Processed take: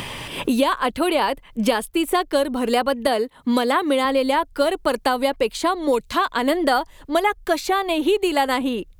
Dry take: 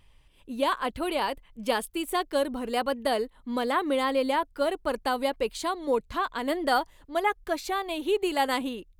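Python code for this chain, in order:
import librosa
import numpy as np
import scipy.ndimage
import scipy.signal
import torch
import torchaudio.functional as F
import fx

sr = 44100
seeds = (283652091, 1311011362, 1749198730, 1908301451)

y = fx.highpass(x, sr, hz=120.0, slope=12, at=(3.07, 4.05))
y = fx.band_squash(y, sr, depth_pct=100)
y = y * librosa.db_to_amplitude(6.5)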